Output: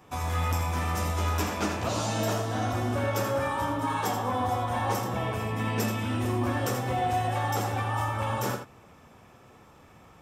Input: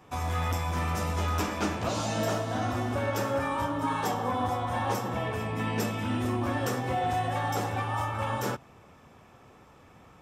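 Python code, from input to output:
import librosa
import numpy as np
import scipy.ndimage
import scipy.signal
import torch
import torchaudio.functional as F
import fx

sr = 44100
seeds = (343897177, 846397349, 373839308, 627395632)

p1 = fx.high_shelf(x, sr, hz=8000.0, db=5.0)
y = p1 + fx.echo_single(p1, sr, ms=82, db=-7.5, dry=0)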